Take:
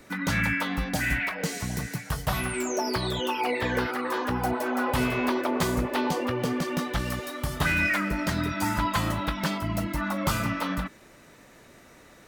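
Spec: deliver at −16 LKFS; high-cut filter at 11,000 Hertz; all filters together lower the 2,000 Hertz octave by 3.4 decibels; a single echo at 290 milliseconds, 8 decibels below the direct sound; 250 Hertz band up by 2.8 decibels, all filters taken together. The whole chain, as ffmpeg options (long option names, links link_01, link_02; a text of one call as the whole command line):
ffmpeg -i in.wav -af "lowpass=11000,equalizer=frequency=250:width_type=o:gain=3.5,equalizer=frequency=2000:width_type=o:gain=-4.5,aecho=1:1:290:0.398,volume=11dB" out.wav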